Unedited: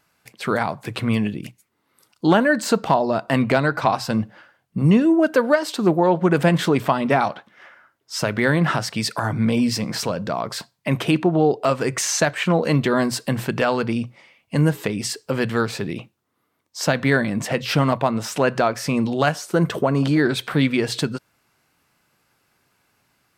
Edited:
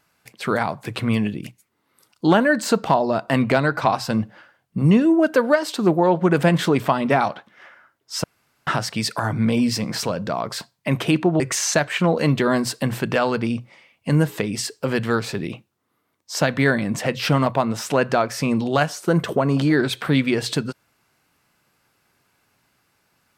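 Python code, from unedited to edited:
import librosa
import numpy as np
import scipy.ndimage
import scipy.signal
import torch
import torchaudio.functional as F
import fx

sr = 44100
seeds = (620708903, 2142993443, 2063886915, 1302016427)

y = fx.edit(x, sr, fx.room_tone_fill(start_s=8.24, length_s=0.43),
    fx.cut(start_s=11.4, length_s=0.46), tone=tone)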